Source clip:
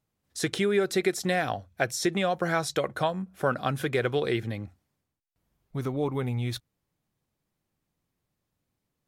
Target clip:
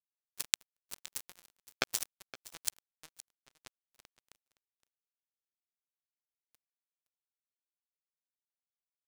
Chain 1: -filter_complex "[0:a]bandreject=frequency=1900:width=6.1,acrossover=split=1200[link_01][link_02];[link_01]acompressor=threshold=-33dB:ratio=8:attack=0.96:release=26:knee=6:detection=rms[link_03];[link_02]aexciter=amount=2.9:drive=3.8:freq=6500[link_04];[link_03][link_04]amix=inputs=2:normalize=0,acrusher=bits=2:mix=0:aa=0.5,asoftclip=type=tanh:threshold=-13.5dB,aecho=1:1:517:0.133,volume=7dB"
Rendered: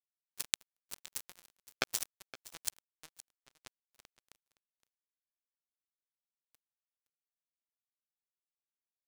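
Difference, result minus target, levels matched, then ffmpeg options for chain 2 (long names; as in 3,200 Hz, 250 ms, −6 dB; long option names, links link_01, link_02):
soft clipping: distortion +16 dB
-filter_complex "[0:a]bandreject=frequency=1900:width=6.1,acrossover=split=1200[link_01][link_02];[link_01]acompressor=threshold=-33dB:ratio=8:attack=0.96:release=26:knee=6:detection=rms[link_03];[link_02]aexciter=amount=2.9:drive=3.8:freq=6500[link_04];[link_03][link_04]amix=inputs=2:normalize=0,acrusher=bits=2:mix=0:aa=0.5,asoftclip=type=tanh:threshold=-4dB,aecho=1:1:517:0.133,volume=7dB"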